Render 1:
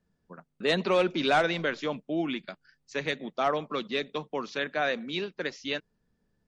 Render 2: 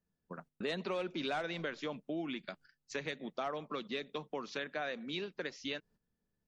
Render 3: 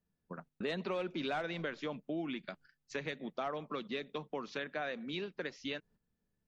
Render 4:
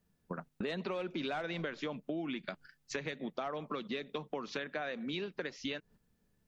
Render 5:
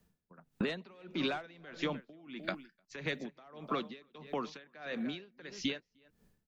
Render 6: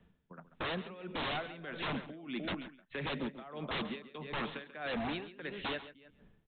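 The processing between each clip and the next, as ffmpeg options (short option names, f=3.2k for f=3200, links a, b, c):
-af "agate=range=-12dB:threshold=-55dB:ratio=16:detection=peak,acompressor=threshold=-40dB:ratio=3,volume=1dB"
-af "bass=f=250:g=2,treble=f=4k:g=-5"
-af "acompressor=threshold=-46dB:ratio=3,volume=8.5dB"
-filter_complex "[0:a]acrossover=split=310|750|2500[a][b][c][d];[b]alimiter=level_in=16dB:limit=-24dB:level=0:latency=1,volume=-16dB[e];[a][e][c][d]amix=inputs=4:normalize=0,asplit=2[f][g];[g]adelay=303.2,volume=-13dB,highshelf=f=4k:g=-6.82[h];[f][h]amix=inputs=2:normalize=0,aeval=exprs='val(0)*pow(10,-24*(0.5-0.5*cos(2*PI*1.6*n/s))/20)':c=same,volume=6dB"
-af "aresample=8000,aeval=exprs='0.0133*(abs(mod(val(0)/0.0133+3,4)-2)-1)':c=same,aresample=44100,aecho=1:1:137:0.2,volume=6.5dB"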